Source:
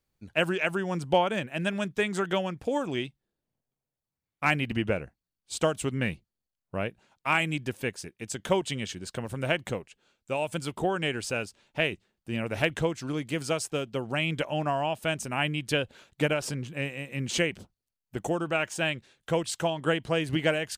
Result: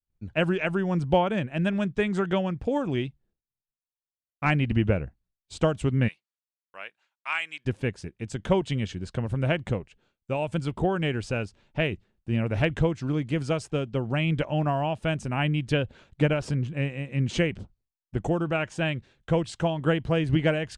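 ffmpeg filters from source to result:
ffmpeg -i in.wav -filter_complex "[0:a]asplit=3[link_01][link_02][link_03];[link_01]afade=type=out:start_time=6.07:duration=0.02[link_04];[link_02]highpass=1400,afade=type=in:start_time=6.07:duration=0.02,afade=type=out:start_time=7.65:duration=0.02[link_05];[link_03]afade=type=in:start_time=7.65:duration=0.02[link_06];[link_04][link_05][link_06]amix=inputs=3:normalize=0,lowpass=frequency=11000:width=0.5412,lowpass=frequency=11000:width=1.3066,aemphasis=mode=reproduction:type=bsi,agate=range=-33dB:threshold=-58dB:ratio=3:detection=peak" out.wav

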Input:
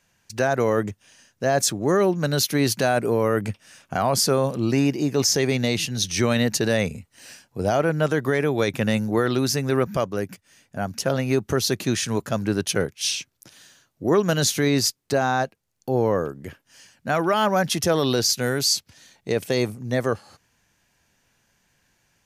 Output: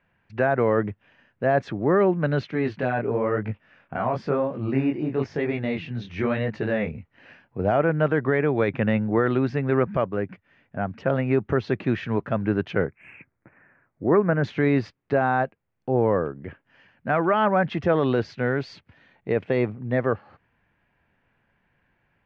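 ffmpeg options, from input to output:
ffmpeg -i in.wav -filter_complex "[0:a]asettb=1/sr,asplit=3[link_01][link_02][link_03];[link_01]atrim=end=2.514[link_04];[link_02]atrim=start=2.51:end=6.97,asetpts=PTS-STARTPTS,afade=type=in:duration=0.004:curve=qsin,afade=type=out:start_time=4.456:duration=0.004:curve=qsin,flanger=delay=18:depth=7.6:speed=1[link_05];[link_03]atrim=start=6.966[link_06];[link_04][link_05]acrossfade=duration=0.004:curve1=hsin:curve2=qsin[link_07];[link_07][link_06]acrossfade=duration=0.004:curve1=qsin:curve2=hsin,asettb=1/sr,asplit=3[link_08][link_09][link_10];[link_08]atrim=end=12.864[link_11];[link_09]atrim=start=12.86:end=14.44,asetpts=PTS-STARTPTS,afade=type=in:duration=0.004:curve=qsin,afade=type=out:start_time=1.576:duration=0.004:curve=qsin,asuperstop=centerf=4400:order=12:qfactor=0.83[link_12];[link_10]atrim=start=14.436[link_13];[link_11][link_12]acrossfade=duration=0.004:curve1=hsin:curve2=qsin[link_14];[link_14][link_13]acrossfade=duration=0.004:curve1=qsin:curve2=hsin,lowpass=frequency=2400:width=0.5412,lowpass=frequency=2400:width=1.3066" out.wav

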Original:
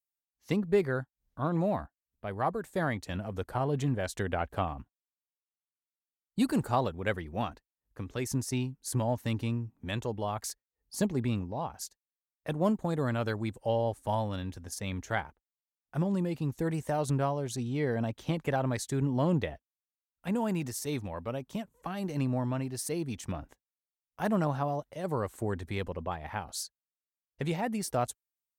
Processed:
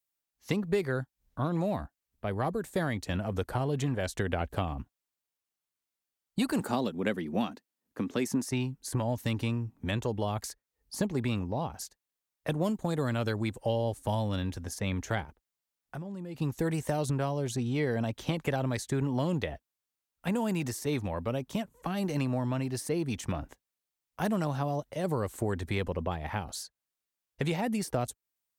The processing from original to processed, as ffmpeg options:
ffmpeg -i in.wav -filter_complex "[0:a]asettb=1/sr,asplit=3[link_01][link_02][link_03];[link_01]atrim=end=6.604[link_04];[link_02]atrim=start=6.6:end=8.51,asetpts=PTS-STARTPTS,afade=type=in:duration=0.004:curve=qsin,afade=type=out:start_time=1.906:duration=0.004:curve=qsin,highpass=frequency=220:width_type=q:width=2.7[link_05];[link_03]atrim=start=8.506[link_06];[link_04][link_05]acrossfade=duration=0.004:curve1=hsin:curve2=qsin[link_07];[link_07][link_06]acrossfade=duration=0.004:curve1=qsin:curve2=hsin,asplit=3[link_08][link_09][link_10];[link_08]afade=type=out:start_time=15.24:duration=0.02[link_11];[link_09]acompressor=threshold=-42dB:ratio=10:attack=3.2:release=140:knee=1:detection=peak,afade=type=in:start_time=15.24:duration=0.02,afade=type=out:start_time=16.4:duration=0.02[link_12];[link_10]afade=type=in:start_time=16.4:duration=0.02[link_13];[link_11][link_12][link_13]amix=inputs=3:normalize=0,acrossover=split=510|2600[link_14][link_15][link_16];[link_14]acompressor=threshold=-35dB:ratio=4[link_17];[link_15]acompressor=threshold=-42dB:ratio=4[link_18];[link_16]acompressor=threshold=-46dB:ratio=4[link_19];[link_17][link_18][link_19]amix=inputs=3:normalize=0,volume=6dB" out.wav

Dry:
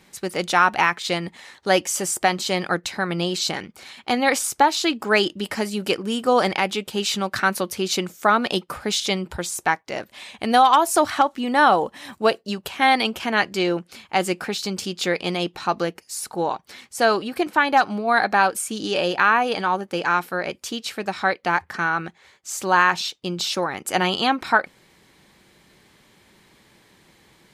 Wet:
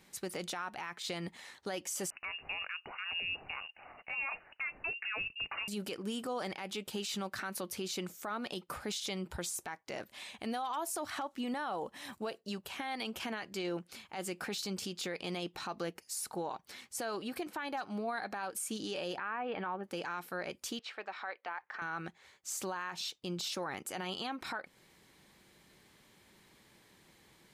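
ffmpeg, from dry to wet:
ffmpeg -i in.wav -filter_complex "[0:a]asettb=1/sr,asplit=3[link_01][link_02][link_03];[link_01]atrim=end=2.104[link_04];[link_02]atrim=start=2.1:end=5.68,asetpts=PTS-STARTPTS,afade=type=in:duration=0.004:curve=qsin,afade=type=out:start_time=3.576:duration=0.004:curve=qsin,lowpass=frequency=2600:width_type=q:width=0.5098,lowpass=frequency=2600:width_type=q:width=0.6013,lowpass=frequency=2600:width_type=q:width=0.9,lowpass=frequency=2600:width_type=q:width=2.563,afreqshift=-3000[link_05];[link_03]atrim=start=5.676[link_06];[link_04][link_05]acrossfade=duration=0.004:curve1=hsin:curve2=qsin[link_07];[link_07][link_06]acrossfade=duration=0.004:curve1=qsin:curve2=hsin,asplit=3[link_08][link_09][link_10];[link_08]afade=type=out:start_time=19.17:duration=0.02[link_11];[link_09]lowpass=frequency=2600:width=0.5412,lowpass=frequency=2600:width=1.3066,afade=type=in:start_time=19.17:duration=0.02,afade=type=out:start_time=19.83:duration=0.02[link_12];[link_10]afade=type=in:start_time=19.83:duration=0.02[link_13];[link_11][link_12][link_13]amix=inputs=3:normalize=0,asettb=1/sr,asplit=3[link_14][link_15][link_16];[link_14]atrim=end=20.794[link_17];[link_15]atrim=start=20.79:end=21.82,asetpts=PTS-STARTPTS,afade=type=in:duration=0.004:curve=qsin,afade=type=out:start_time=1.026:duration=0.004:curve=qsin,highpass=630,lowpass=2600[link_18];[link_16]atrim=start=21.816[link_19];[link_17][link_18]acrossfade=duration=0.004:curve1=hsin:curve2=qsin[link_20];[link_20][link_19]acrossfade=duration=0.004:curve1=qsin:curve2=hsin,highshelf=frequency=8500:gain=5,acompressor=threshold=-23dB:ratio=4,alimiter=limit=-20.5dB:level=0:latency=1:release=36,volume=-8.5dB" out.wav

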